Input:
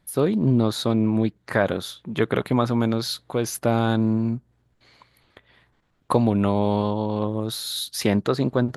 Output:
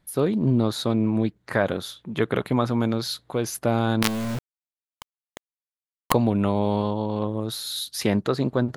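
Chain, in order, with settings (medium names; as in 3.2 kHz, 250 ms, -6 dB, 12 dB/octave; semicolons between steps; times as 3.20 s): 4.02–6.12 s: companded quantiser 2-bit; trim -1.5 dB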